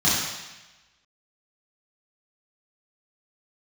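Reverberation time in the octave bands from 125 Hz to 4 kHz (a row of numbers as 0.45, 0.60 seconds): 1.1, 1.0, 1.0, 1.1, 1.2, 1.1 seconds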